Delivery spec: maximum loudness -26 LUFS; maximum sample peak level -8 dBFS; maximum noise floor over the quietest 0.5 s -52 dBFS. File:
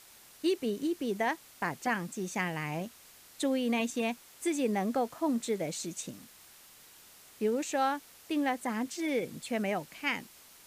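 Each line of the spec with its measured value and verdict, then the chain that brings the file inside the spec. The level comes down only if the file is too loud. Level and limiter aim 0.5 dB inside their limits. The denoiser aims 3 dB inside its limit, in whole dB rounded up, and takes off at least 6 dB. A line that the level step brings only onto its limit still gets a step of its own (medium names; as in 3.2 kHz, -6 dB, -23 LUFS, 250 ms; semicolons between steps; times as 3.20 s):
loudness -33.0 LUFS: pass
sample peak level -17.5 dBFS: pass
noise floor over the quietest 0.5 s -56 dBFS: pass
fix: none needed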